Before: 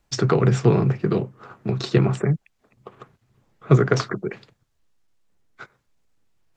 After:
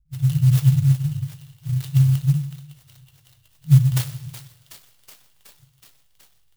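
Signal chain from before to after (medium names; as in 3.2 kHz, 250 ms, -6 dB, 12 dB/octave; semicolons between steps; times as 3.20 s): FFT band-reject 160–2700 Hz; level-controlled noise filter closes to 460 Hz, open at -17 dBFS; feedback echo behind a high-pass 372 ms, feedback 75%, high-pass 1.7 kHz, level -11.5 dB; plate-style reverb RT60 1.1 s, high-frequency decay 0.95×, DRR 8.5 dB; sampling jitter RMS 0.054 ms; trim +4 dB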